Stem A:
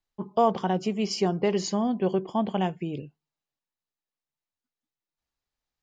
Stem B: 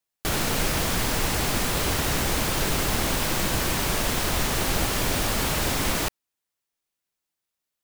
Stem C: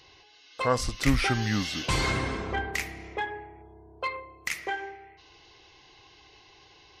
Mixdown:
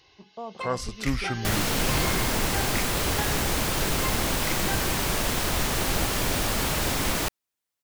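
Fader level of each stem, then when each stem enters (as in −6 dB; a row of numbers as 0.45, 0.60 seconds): −16.0, −1.0, −3.5 decibels; 0.00, 1.20, 0.00 seconds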